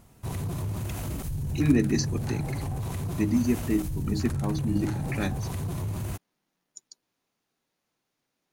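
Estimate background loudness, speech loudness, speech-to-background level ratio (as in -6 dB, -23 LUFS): -32.5 LUFS, -28.5 LUFS, 4.0 dB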